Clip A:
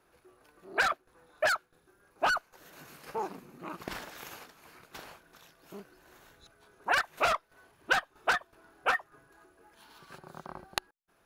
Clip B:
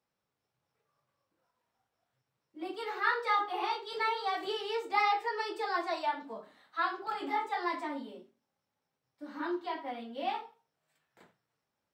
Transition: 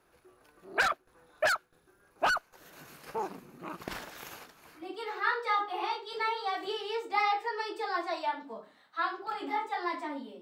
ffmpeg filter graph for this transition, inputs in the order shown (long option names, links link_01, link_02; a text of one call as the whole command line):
ffmpeg -i cue0.wav -i cue1.wav -filter_complex "[0:a]apad=whole_dur=10.41,atrim=end=10.41,atrim=end=4.92,asetpts=PTS-STARTPTS[link_01];[1:a]atrim=start=2.52:end=8.21,asetpts=PTS-STARTPTS[link_02];[link_01][link_02]acrossfade=duration=0.2:curve1=tri:curve2=tri" out.wav